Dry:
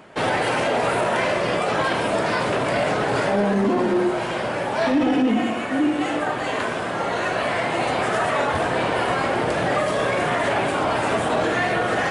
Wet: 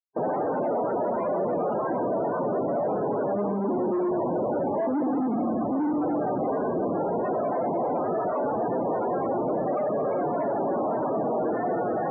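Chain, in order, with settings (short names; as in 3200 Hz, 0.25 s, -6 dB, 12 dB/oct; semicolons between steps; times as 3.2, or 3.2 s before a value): Schmitt trigger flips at -26 dBFS; loudest bins only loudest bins 32; Butterworth band-pass 470 Hz, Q 0.52; gain -2 dB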